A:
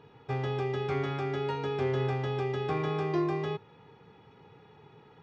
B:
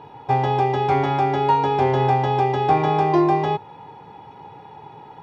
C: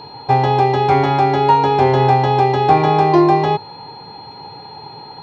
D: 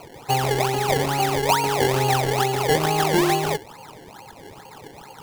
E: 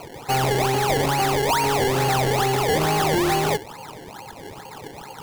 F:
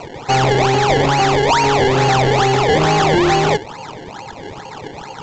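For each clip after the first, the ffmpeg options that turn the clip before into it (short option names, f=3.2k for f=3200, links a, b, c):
-af "superequalizer=6b=1.41:8b=2:9b=3.98:16b=1.78,volume=8.5dB"
-af "aeval=exprs='val(0)+0.00631*sin(2*PI*4200*n/s)':c=same,volume=5.5dB"
-af "acrusher=samples=24:mix=1:aa=0.000001:lfo=1:lforange=24:lforate=2.3,volume=-7.5dB"
-af "asoftclip=type=hard:threshold=-22dB,volume=4dB"
-af "volume=7dB" -ar 16000 -c:a g722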